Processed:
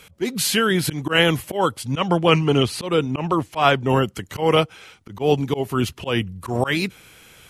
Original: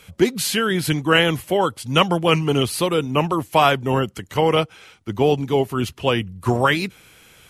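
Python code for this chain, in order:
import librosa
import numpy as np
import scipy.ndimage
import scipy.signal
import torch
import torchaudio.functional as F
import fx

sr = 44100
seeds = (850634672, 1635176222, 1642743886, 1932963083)

y = fx.air_absorb(x, sr, metres=52.0, at=(1.86, 3.9))
y = fx.auto_swell(y, sr, attack_ms=129.0)
y = y * 10.0 ** (1.5 / 20.0)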